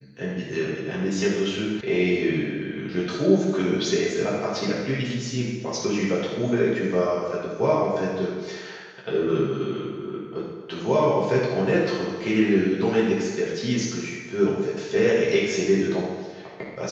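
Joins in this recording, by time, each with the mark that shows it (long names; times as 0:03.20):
0:01.81: cut off before it has died away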